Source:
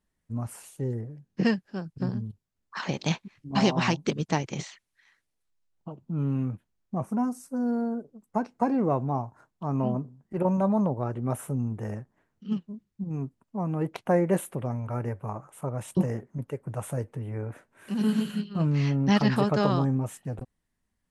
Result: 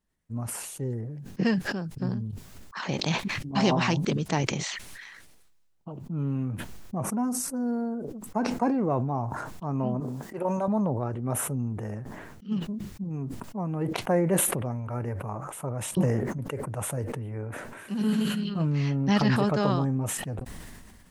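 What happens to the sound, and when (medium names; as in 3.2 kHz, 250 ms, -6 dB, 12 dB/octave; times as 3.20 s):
10.00–10.68 s: tone controls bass -14 dB, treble +4 dB
whole clip: decay stretcher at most 31 dB/s; trim -1.5 dB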